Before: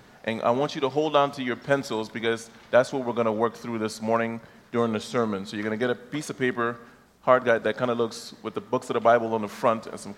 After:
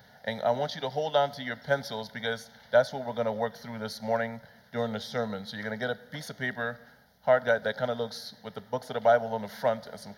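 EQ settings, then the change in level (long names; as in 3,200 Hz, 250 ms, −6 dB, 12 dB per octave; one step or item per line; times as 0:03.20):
high-pass filter 67 Hz
high-shelf EQ 6,700 Hz +6 dB
phaser with its sweep stopped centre 1,700 Hz, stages 8
−1.5 dB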